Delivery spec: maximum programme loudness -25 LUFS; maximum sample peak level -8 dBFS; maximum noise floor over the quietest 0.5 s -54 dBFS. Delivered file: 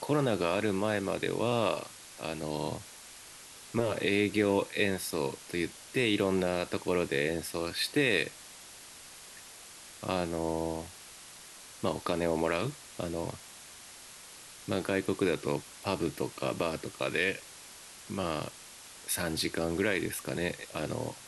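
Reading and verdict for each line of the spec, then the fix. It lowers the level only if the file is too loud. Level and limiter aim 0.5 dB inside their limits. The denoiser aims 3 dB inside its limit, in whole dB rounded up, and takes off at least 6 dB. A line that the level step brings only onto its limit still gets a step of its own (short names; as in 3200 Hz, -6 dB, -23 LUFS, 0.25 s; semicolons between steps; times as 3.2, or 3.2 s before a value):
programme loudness -32.0 LUFS: OK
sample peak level -13.5 dBFS: OK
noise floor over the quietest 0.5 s -50 dBFS: fail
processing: denoiser 7 dB, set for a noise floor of -50 dBFS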